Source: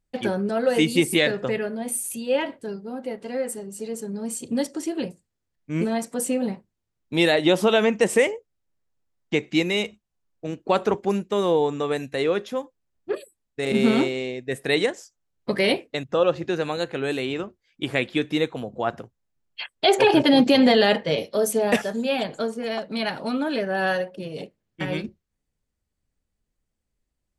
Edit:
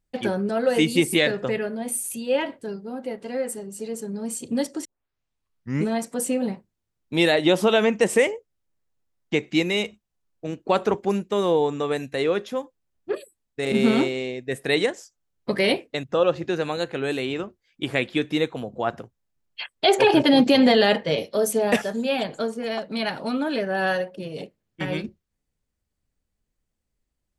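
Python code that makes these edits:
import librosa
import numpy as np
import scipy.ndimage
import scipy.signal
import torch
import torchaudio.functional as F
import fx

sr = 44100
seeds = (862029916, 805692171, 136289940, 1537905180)

y = fx.edit(x, sr, fx.tape_start(start_s=4.85, length_s=1.03), tone=tone)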